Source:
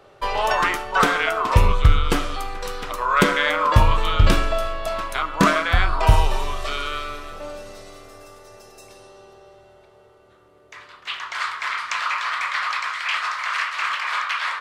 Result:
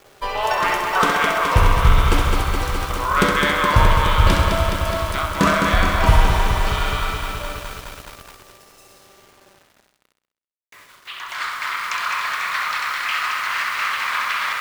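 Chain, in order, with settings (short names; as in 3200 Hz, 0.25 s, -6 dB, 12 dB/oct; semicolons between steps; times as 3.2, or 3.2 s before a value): 7.75–11.17 flange 1.9 Hz, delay 0.6 ms, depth 8.4 ms, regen +70%; requantised 8-bit, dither none; flutter echo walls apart 11.2 m, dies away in 0.63 s; lo-fi delay 0.21 s, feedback 80%, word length 6-bit, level -5 dB; gain -1 dB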